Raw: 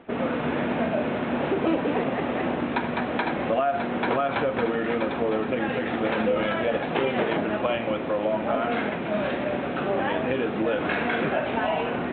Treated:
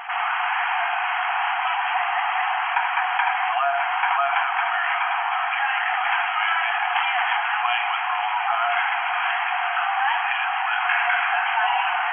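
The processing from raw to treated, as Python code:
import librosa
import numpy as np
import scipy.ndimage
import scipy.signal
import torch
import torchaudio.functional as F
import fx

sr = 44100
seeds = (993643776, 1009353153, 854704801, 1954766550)

y = fx.brickwall_bandpass(x, sr, low_hz=700.0, high_hz=3300.0)
y = fx.echo_diffused(y, sr, ms=481, feedback_pct=73, wet_db=-12.5)
y = fx.env_flatten(y, sr, amount_pct=50)
y = y * librosa.db_to_amplitude(5.5)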